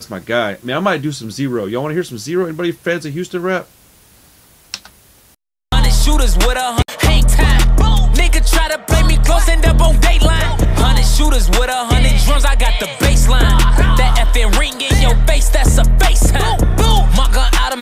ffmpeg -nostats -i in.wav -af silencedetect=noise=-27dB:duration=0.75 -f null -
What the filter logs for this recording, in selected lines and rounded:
silence_start: 3.62
silence_end: 4.74 | silence_duration: 1.12
silence_start: 4.86
silence_end: 5.72 | silence_duration: 0.87